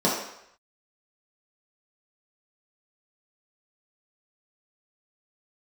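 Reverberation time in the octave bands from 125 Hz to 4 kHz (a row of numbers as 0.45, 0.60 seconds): 0.55, 0.55, 0.70, 0.75, 0.80, 0.70 seconds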